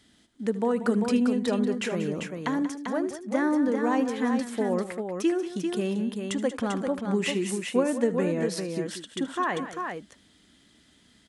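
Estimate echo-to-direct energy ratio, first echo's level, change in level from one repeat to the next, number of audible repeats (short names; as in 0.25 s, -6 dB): -4.5 dB, -16.0 dB, no steady repeat, 3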